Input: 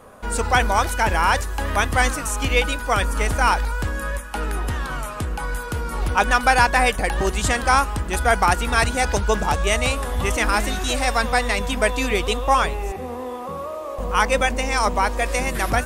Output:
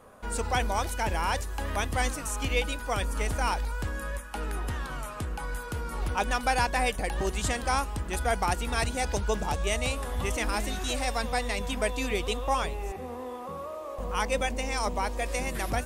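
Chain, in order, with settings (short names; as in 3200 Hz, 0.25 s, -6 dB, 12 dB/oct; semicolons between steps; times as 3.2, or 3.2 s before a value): dynamic EQ 1400 Hz, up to -6 dB, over -31 dBFS, Q 1.3; gain -7.5 dB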